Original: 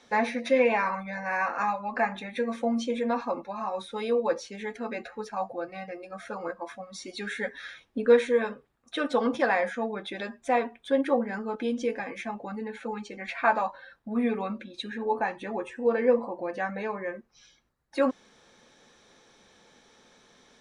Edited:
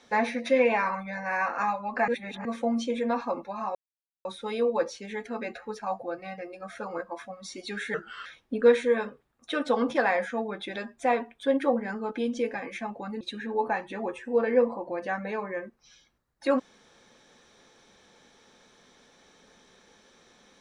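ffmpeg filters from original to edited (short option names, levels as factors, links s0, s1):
-filter_complex "[0:a]asplit=7[s0][s1][s2][s3][s4][s5][s6];[s0]atrim=end=2.082[s7];[s1]atrim=start=2.078:end=2.452,asetpts=PTS-STARTPTS,areverse[s8];[s2]atrim=start=2.448:end=3.75,asetpts=PTS-STARTPTS,afade=t=out:st=1.298:d=0.004:c=hsin,apad=pad_dur=0.5[s9];[s3]atrim=start=3.75:end=7.444,asetpts=PTS-STARTPTS,afade=t=in:d=0.004:c=hsin[s10];[s4]atrim=start=7.44:end=7.7,asetpts=PTS-STARTPTS,asetrate=36162,aresample=44100[s11];[s5]atrim=start=7.696:end=12.652[s12];[s6]atrim=start=14.718[s13];[s7][s8]acrossfade=d=0.004:c1=hsin:c2=hsin[s14];[s9][s10]concat=n=2:v=0:a=1[s15];[s14][s15]acrossfade=d=0.004:c1=hsin:c2=hsin[s16];[s16][s11]acrossfade=d=0.004:c1=hsin:c2=hsin[s17];[s17][s12]acrossfade=d=0.004:c1=hsin:c2=hsin[s18];[s18][s13]acrossfade=d=0.004:c1=hsin:c2=hsin"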